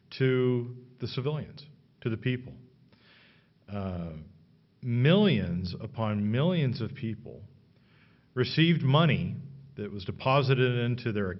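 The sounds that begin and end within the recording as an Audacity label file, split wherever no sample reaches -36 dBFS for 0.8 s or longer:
3.700000	7.350000	sound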